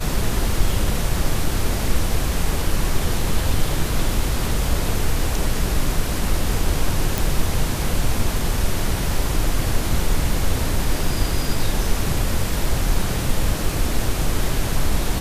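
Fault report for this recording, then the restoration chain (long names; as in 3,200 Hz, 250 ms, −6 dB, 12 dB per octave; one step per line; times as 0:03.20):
0:07.18: click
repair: click removal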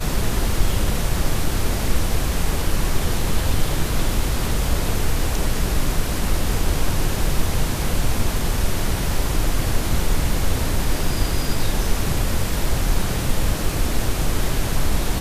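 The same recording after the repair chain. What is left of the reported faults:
none of them is left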